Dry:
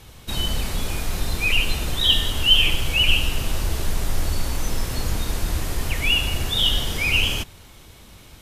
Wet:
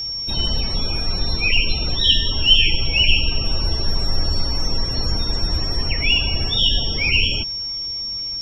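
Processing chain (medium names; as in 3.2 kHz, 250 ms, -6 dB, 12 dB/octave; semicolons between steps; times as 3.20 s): loudest bins only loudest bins 64; whistle 5.5 kHz -26 dBFS; trim +2 dB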